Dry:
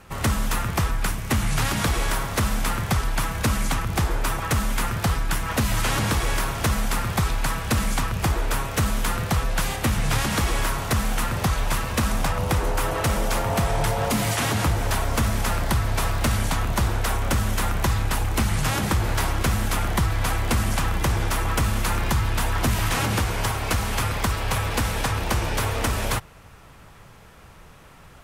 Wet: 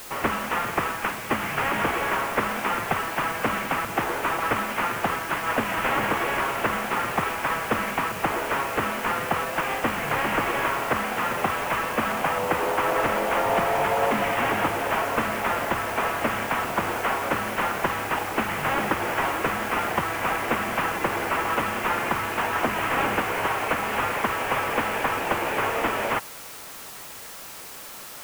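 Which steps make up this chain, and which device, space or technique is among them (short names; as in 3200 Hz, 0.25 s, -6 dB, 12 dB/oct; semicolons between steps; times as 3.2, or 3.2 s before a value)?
army field radio (BPF 350–3300 Hz; CVSD 16 kbps; white noise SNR 15 dB); gain +5 dB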